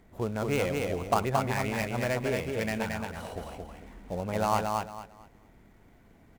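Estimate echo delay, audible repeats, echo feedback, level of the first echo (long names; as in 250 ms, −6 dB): 224 ms, 3, 25%, −3.5 dB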